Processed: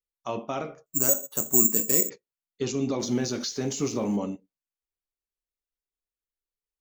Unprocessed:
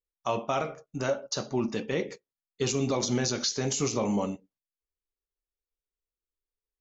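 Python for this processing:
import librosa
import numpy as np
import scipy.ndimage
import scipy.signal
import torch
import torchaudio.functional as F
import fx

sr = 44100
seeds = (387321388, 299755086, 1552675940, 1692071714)

y = fx.law_mismatch(x, sr, coded='mu', at=(2.99, 4.17))
y = fx.dynamic_eq(y, sr, hz=280.0, q=1.1, threshold_db=-42.0, ratio=4.0, max_db=7)
y = fx.resample_bad(y, sr, factor=6, down='filtered', up='zero_stuff', at=(0.86, 2.1))
y = y * librosa.db_to_amplitude(-4.5)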